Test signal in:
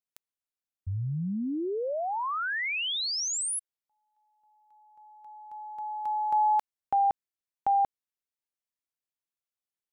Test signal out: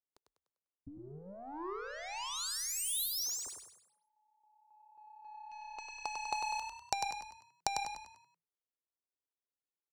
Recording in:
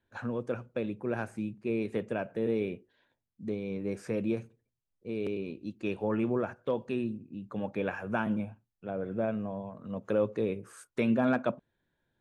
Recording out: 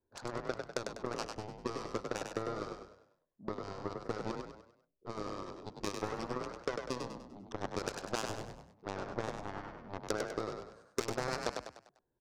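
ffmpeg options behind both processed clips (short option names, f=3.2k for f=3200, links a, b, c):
-filter_complex "[0:a]adynamicsmooth=sensitivity=6.5:basefreq=1k,equalizer=f=160:t=o:w=0.67:g=-6,equalizer=f=400:t=o:w=0.67:g=8,equalizer=f=1k:t=o:w=0.67:g=7,equalizer=f=4k:t=o:w=0.67:g=7,acompressor=threshold=-32dB:ratio=6:attack=19:release=216:knee=6:detection=rms,aeval=exprs='0.112*(cos(1*acos(clip(val(0)/0.112,-1,1)))-cos(1*PI/2))+0.0141*(cos(5*acos(clip(val(0)/0.112,-1,1)))-cos(5*PI/2))+0.0355*(cos(7*acos(clip(val(0)/0.112,-1,1)))-cos(7*PI/2))+0.000708*(cos(8*acos(clip(val(0)/0.112,-1,1)))-cos(8*PI/2))':c=same,highshelf=f=3.9k:t=q:w=1.5:g=9.5,asplit=2[a][b];[b]asplit=5[c][d][e][f][g];[c]adelay=99,afreqshift=33,volume=-5dB[h];[d]adelay=198,afreqshift=66,volume=-12.5dB[i];[e]adelay=297,afreqshift=99,volume=-20.1dB[j];[f]adelay=396,afreqshift=132,volume=-27.6dB[k];[g]adelay=495,afreqshift=165,volume=-35.1dB[l];[h][i][j][k][l]amix=inputs=5:normalize=0[m];[a][m]amix=inputs=2:normalize=0,volume=-1dB"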